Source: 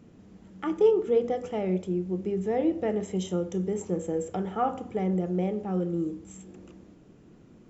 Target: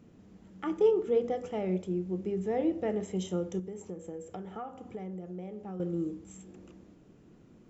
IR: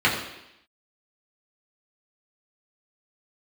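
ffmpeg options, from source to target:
-filter_complex "[0:a]asettb=1/sr,asplit=3[a][b][c];[a]atrim=end=3.594[d];[b]atrim=start=3.59:end=5.8,asetpts=PTS-STARTPTS,afade=t=in:d=0.004:c=qsin,afade=t=out:st=2.206:d=0.004:c=qsin,acompressor=threshold=-35dB:ratio=5[e];[c]atrim=start=5.796[f];[d][e]acrossfade=d=0.004:c1=hsin:c2=qsin[g];[g][f]acrossfade=d=0.004:c1=qsin:c2=hsin,volume=-3.5dB"

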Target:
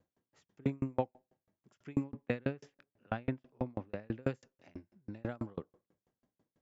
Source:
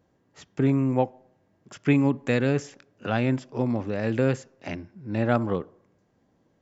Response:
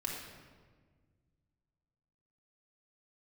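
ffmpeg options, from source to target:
-filter_complex "[0:a]asettb=1/sr,asplit=3[a][b][c];[a]atrim=end=2.044[d];[b]atrim=start=2.04:end=4.23,asetpts=PTS-STARTPTS,afade=t=in:d=0.004:c=qsin,afade=t=out:st=2.186:d=0.004:c=qsin,lowpass=3.3k[e];[c]atrim=start=4.226[f];[d][e]acrossfade=d=0.004:c1=hsin:c2=qsin[g];[g][f]acrossfade=d=0.004:c1=qsin:c2=hsin,aeval=exprs='val(0)*pow(10,-38*if(lt(mod(6.1*n/s,1),2*abs(6.1)/1000),1-mod(6.1*n/s,1)/(2*abs(6.1)/1000),(mod(6.1*n/s,1)-2*abs(6.1)/1000)/(1-2*abs(6.1)/1000))/20)':c=same,volume=-5dB"

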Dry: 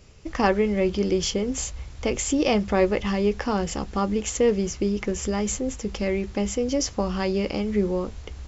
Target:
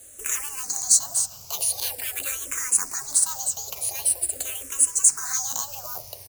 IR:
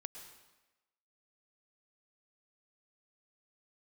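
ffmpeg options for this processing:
-filter_complex "[0:a]highpass=f=44:p=1,afftfilt=real='re*lt(hypot(re,im),0.141)':imag='im*lt(hypot(re,im),0.141)':win_size=1024:overlap=0.75,bass=f=250:g=-10,treble=f=4k:g=-13,bandreject=f=60:t=h:w=6,bandreject=f=120:t=h:w=6,bandreject=f=180:t=h:w=6,bandreject=f=240:t=h:w=6,bandreject=f=300:t=h:w=6,bandreject=f=360:t=h:w=6,bandreject=f=420:t=h:w=6,bandreject=f=480:t=h:w=6,bandreject=f=540:t=h:w=6,asplit=2[a][b];[b]asoftclip=type=tanh:threshold=-32dB,volume=-4.5dB[c];[a][c]amix=inputs=2:normalize=0,acrusher=bits=4:mode=log:mix=0:aa=0.000001,acrossover=split=220|1400[d][e][f];[f]aexciter=amount=14.6:drive=7.5:freq=4k[g];[d][e][g]amix=inputs=3:normalize=0,asetrate=59535,aresample=44100,asplit=2[h][i];[i]afreqshift=-0.45[j];[h][j]amix=inputs=2:normalize=1,volume=-1.5dB"

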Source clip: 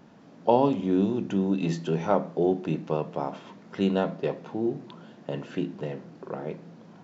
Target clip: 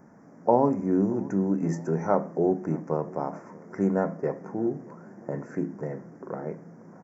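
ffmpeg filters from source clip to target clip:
-filter_complex "[0:a]asuperstop=centerf=3400:order=8:qfactor=1,asplit=2[a][b];[b]adelay=626,lowpass=f=2k:p=1,volume=-22.5dB,asplit=2[c][d];[d]adelay=626,lowpass=f=2k:p=1,volume=0.54,asplit=2[e][f];[f]adelay=626,lowpass=f=2k:p=1,volume=0.54,asplit=2[g][h];[h]adelay=626,lowpass=f=2k:p=1,volume=0.54[i];[c][e][g][i]amix=inputs=4:normalize=0[j];[a][j]amix=inputs=2:normalize=0"

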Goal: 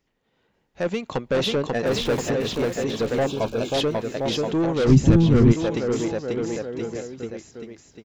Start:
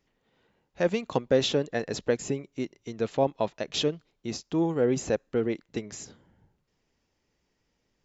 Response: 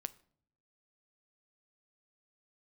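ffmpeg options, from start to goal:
-filter_complex "[0:a]asettb=1/sr,asplit=3[a][b][c];[a]atrim=end=1.864[d];[b]atrim=start=1.86:end=2.3,asetpts=PTS-STARTPTS,afade=t=in:d=0.004:c=qsin,afade=t=out:st=0.436:d=0.004:c=qsin,aeval=exprs='val(0)+0.5*0.0224*sgn(val(0))':c=same[e];[c]atrim=start=2.296[f];[d][e]acrossfade=d=0.004:c1=hsin:c2=qsin[g];[g][f]acrossfade=d=0.004:c1=qsin:c2=hsin,acrossover=split=4800[h][i];[i]acompressor=threshold=-45dB:ratio=4:attack=1:release=60[j];[h][j]amix=inputs=2:normalize=0,aecho=1:1:540|1026|1463|1857|2211:0.631|0.398|0.251|0.158|0.1,dynaudnorm=f=150:g=13:m=7.5dB,asoftclip=type=tanh:threshold=-17dB,asettb=1/sr,asplit=3[k][l][m];[k]atrim=end=3.264[n];[l]atrim=start=3.26:end=3.74,asetpts=PTS-STARTPTS,afade=t=in:d=0.004:c=qsin,afade=t=out:st=0.476:d=0.004:c=qsin,asuperstop=centerf=1900:order=12:qfactor=4.2[o];[m]atrim=start=3.736[p];[n][o]acrossfade=d=0.004:c1=hsin:c2=qsin[q];[q][p]acrossfade=d=0.004:c1=qsin:c2=hsin,asplit=3[r][s][t];[r]afade=t=out:st=4.87:d=0.02[u];[s]asubboost=boost=11.5:cutoff=180,afade=t=in:st=4.87:d=0.02,afade=t=out:st=5.52:d=0.02[v];[t]afade=t=in:st=5.52:d=0.02[w];[u][v][w]amix=inputs=3:normalize=0"

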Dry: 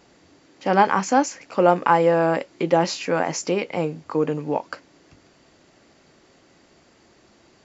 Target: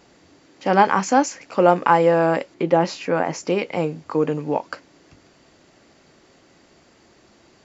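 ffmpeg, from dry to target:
-filter_complex "[0:a]asettb=1/sr,asplit=3[a][b][c];[a]atrim=end=2.544[d];[b]atrim=start=2.54:end=3.5,asetpts=PTS-STARTPTS,afade=t=in:d=0.004:c=qsin,afade=t=out:st=0.956:d=0.004:c=qsin,highshelf=f=3.3k:g=-9[e];[c]atrim=start=3.496[f];[d][e]acrossfade=d=0.004:c1=hsin:c2=qsin[g];[g][f]acrossfade=d=0.004:c1=qsin:c2=hsin,volume=1.5dB"

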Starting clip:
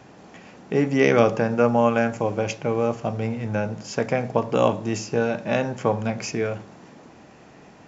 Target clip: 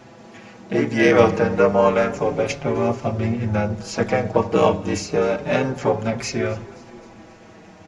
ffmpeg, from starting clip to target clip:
-filter_complex "[0:a]asplit=5[a][b][c][d][e];[b]adelay=261,afreqshift=-41,volume=-22dB[f];[c]adelay=522,afreqshift=-82,volume=-26.6dB[g];[d]adelay=783,afreqshift=-123,volume=-31.2dB[h];[e]adelay=1044,afreqshift=-164,volume=-35.7dB[i];[a][f][g][h][i]amix=inputs=5:normalize=0,asplit=3[j][k][l];[k]asetrate=37084,aresample=44100,atempo=1.18921,volume=-5dB[m];[l]asetrate=66075,aresample=44100,atempo=0.66742,volume=-17dB[n];[j][m][n]amix=inputs=3:normalize=0,asplit=2[o][p];[p]adelay=5.5,afreqshift=-0.3[q];[o][q]amix=inputs=2:normalize=1,volume=5dB"

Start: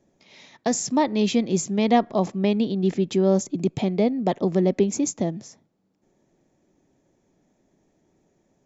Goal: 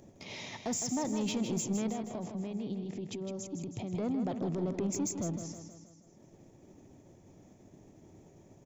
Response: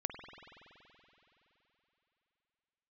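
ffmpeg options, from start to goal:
-filter_complex "[0:a]agate=range=-33dB:threshold=-52dB:ratio=3:detection=peak,equalizer=f=100:t=o:w=0.67:g=10,equalizer=f=1.6k:t=o:w=0.67:g=-6,equalizer=f=4k:t=o:w=0.67:g=-4,acompressor=mode=upward:threshold=-27dB:ratio=2.5,alimiter=limit=-20dB:level=0:latency=1:release=10,asettb=1/sr,asplit=3[a][b][c];[a]atrim=end=1.894[d];[b]atrim=start=1.89:end=3.94,asetpts=PTS-STARTPTS,afade=t=in:d=0.004:c=qsin,afade=t=out:st=2.046:d=0.004:c=qsin,acompressor=threshold=-31dB:ratio=6[e];[c]atrim=start=3.936[f];[d][e]acrossfade=d=0.004:c1=hsin:c2=qsin[g];[g][f]acrossfade=d=0.004:c1=qsin:c2=hsin,asoftclip=type=tanh:threshold=-23dB,aecho=1:1:159|318|477|636|795|954:0.398|0.215|0.116|0.0627|0.0339|0.0183,volume=-4.5dB"

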